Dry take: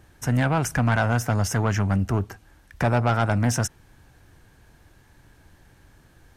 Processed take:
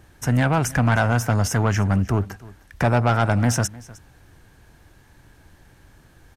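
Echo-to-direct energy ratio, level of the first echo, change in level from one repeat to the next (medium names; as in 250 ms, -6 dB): -21.0 dB, -21.0 dB, no regular repeats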